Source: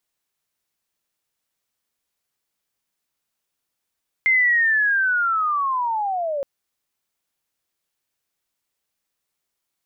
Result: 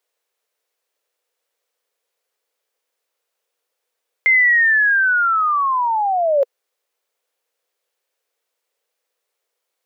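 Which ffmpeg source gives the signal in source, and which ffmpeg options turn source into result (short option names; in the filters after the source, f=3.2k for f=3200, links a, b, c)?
-f lavfi -i "aevalsrc='pow(10,(-13.5-8.5*t/2.17)/20)*sin(2*PI*(2100*t-1560*t*t/(2*2.17)))':d=2.17:s=44100"
-af "highpass=f=480:t=q:w=4.9,equalizer=f=2k:t=o:w=2.5:g=3.5"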